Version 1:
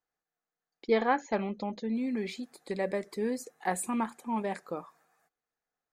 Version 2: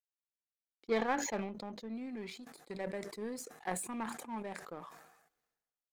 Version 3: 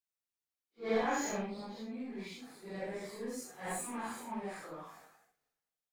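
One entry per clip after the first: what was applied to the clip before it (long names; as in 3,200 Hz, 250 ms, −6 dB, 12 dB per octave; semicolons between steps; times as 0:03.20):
power curve on the samples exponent 1.4; level that may fall only so fast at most 56 dB per second; level −5 dB
random phases in long frames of 200 ms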